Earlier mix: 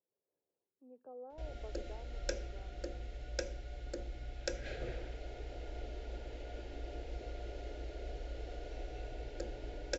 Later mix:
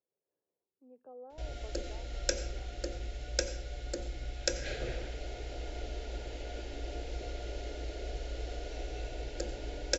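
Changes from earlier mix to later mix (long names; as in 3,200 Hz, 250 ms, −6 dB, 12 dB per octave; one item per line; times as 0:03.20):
background: send on
master: add high-shelf EQ 3,900 Hz +10.5 dB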